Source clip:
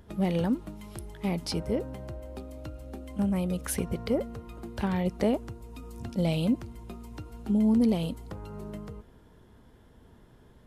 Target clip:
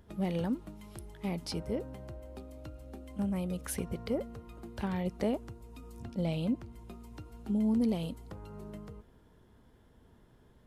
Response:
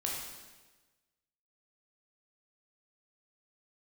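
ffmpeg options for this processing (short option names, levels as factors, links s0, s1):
-filter_complex "[0:a]asettb=1/sr,asplit=3[s0][s1][s2];[s0]atrim=end=6.034[s3];[s1]atrim=start=6.03:end=6.73,asetpts=PTS-STARTPTS,afade=t=in:d=0.004:c=qsin,afade=t=out:st=0.696:d=0.004:c=qsin,highshelf=f=4500:g=-7[s4];[s2]atrim=start=6.726[s5];[s3][s4]acrossfade=d=0.004:c1=hsin:c2=qsin[s6];[s6][s5]acrossfade=d=0.004:c1=qsin:c2=hsin,volume=0.531"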